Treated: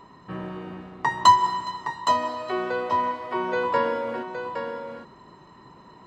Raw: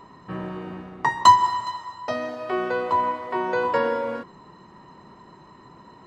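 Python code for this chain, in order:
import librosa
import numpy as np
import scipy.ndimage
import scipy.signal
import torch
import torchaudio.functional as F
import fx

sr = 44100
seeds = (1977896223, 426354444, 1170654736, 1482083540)

y = fx.peak_eq(x, sr, hz=3300.0, db=2.0, octaves=0.77)
y = y + 10.0 ** (-7.0 / 20.0) * np.pad(y, (int(816 * sr / 1000.0), 0))[:len(y)]
y = F.gain(torch.from_numpy(y), -2.0).numpy()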